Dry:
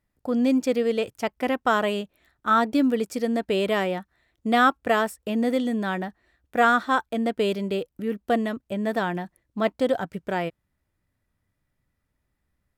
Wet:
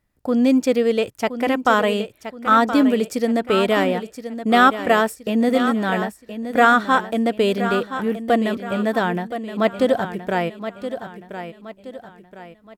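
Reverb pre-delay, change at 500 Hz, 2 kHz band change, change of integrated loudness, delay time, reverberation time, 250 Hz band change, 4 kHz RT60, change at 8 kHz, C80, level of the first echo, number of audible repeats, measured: no reverb audible, +5.5 dB, +5.5 dB, +5.5 dB, 1,022 ms, no reverb audible, +5.5 dB, no reverb audible, +5.5 dB, no reverb audible, −10.5 dB, 4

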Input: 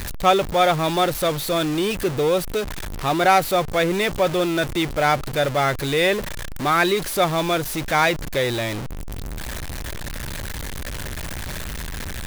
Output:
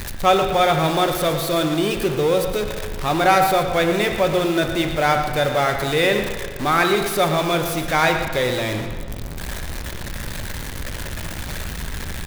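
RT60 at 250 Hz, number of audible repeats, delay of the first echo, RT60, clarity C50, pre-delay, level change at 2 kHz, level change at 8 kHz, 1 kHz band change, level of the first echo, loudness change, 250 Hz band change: 1.7 s, 1, 116 ms, 1.7 s, 5.5 dB, 8 ms, +1.5 dB, +0.5 dB, +1.5 dB, −11.0 dB, +1.5 dB, +1.5 dB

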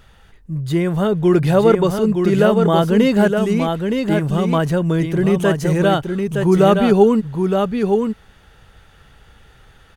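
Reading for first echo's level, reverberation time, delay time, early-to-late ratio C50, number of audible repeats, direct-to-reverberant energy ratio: −5.0 dB, no reverb audible, 917 ms, no reverb audible, 1, no reverb audible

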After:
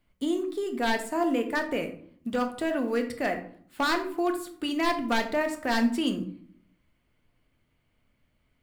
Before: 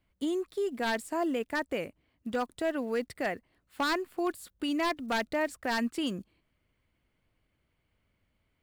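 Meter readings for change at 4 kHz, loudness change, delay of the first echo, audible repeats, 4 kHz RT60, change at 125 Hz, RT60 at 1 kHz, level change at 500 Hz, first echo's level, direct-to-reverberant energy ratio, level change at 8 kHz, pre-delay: +3.5 dB, +4.0 dB, no echo audible, no echo audible, 0.35 s, +5.0 dB, 0.55 s, +3.0 dB, no echo audible, 5.0 dB, +3.5 dB, 3 ms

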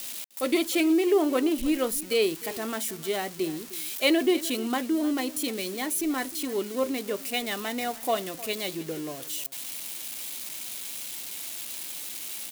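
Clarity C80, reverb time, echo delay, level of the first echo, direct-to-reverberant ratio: no reverb audible, no reverb audible, 306 ms, −18.0 dB, no reverb audible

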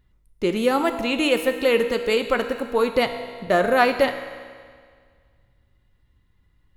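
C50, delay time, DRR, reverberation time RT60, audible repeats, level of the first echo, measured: 8.0 dB, no echo audible, 6.5 dB, 1.9 s, no echo audible, no echo audible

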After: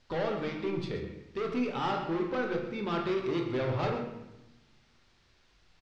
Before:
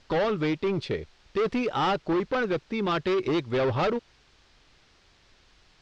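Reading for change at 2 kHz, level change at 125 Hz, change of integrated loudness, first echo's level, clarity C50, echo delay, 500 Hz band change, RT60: −6.0 dB, −3.5 dB, −5.5 dB, −12.0 dB, 5.0 dB, 129 ms, −6.0 dB, 0.95 s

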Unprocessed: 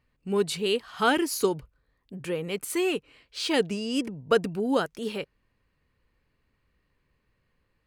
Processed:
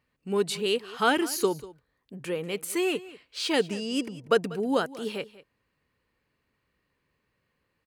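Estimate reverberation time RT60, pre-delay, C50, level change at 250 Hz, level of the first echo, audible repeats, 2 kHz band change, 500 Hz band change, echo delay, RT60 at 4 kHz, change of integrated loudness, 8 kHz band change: no reverb audible, no reverb audible, no reverb audible, −1.5 dB, −18.5 dB, 1, 0.0 dB, −0.5 dB, 192 ms, no reverb audible, −0.5 dB, 0.0 dB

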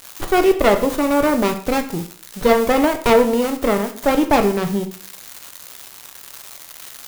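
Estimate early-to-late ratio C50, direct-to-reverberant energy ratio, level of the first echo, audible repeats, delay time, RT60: 11.5 dB, 6.0 dB, no echo audible, no echo audible, no echo audible, 0.50 s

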